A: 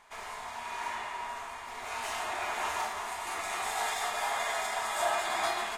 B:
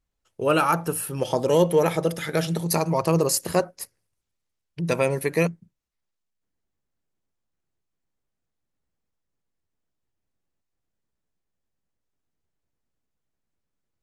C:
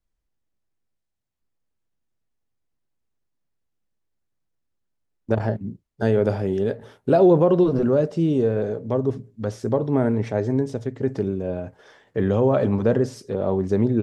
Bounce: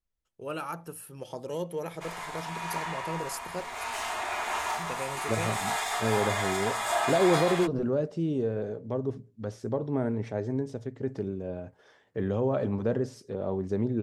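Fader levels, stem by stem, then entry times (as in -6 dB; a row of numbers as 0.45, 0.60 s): +2.0, -15.0, -8.5 dB; 1.90, 0.00, 0.00 s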